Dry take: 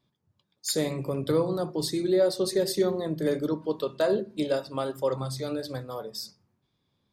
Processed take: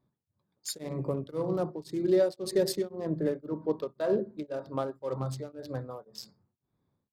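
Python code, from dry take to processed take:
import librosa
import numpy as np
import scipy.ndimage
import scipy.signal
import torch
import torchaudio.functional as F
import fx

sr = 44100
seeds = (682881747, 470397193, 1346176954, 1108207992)

y = fx.wiener(x, sr, points=15)
y = fx.high_shelf(y, sr, hz=3800.0, db=-7.5, at=(3.15, 4.88))
y = y * np.abs(np.cos(np.pi * 1.9 * np.arange(len(y)) / sr))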